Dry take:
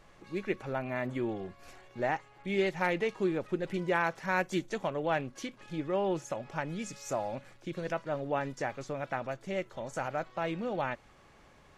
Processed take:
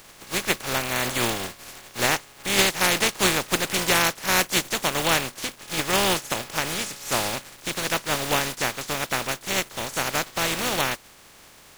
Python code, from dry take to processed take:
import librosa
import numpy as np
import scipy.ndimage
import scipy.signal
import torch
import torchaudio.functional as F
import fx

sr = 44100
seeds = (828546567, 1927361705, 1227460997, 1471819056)

y = fx.spec_flatten(x, sr, power=0.3)
y = F.gain(torch.from_numpy(y), 9.0).numpy()